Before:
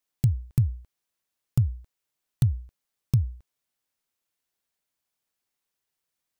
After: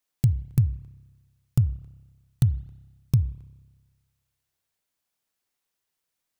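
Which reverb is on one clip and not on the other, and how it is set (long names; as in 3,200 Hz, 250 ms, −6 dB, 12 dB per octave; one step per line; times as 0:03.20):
spring reverb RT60 1.4 s, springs 30 ms, chirp 55 ms, DRR 17 dB
level +1.5 dB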